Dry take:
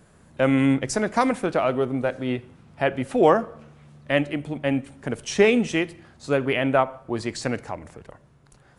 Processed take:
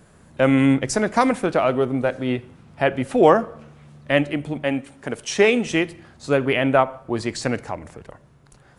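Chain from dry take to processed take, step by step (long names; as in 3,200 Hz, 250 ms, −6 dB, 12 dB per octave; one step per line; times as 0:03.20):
0:04.64–0:05.67: low-shelf EQ 210 Hz −9.5 dB
level +3 dB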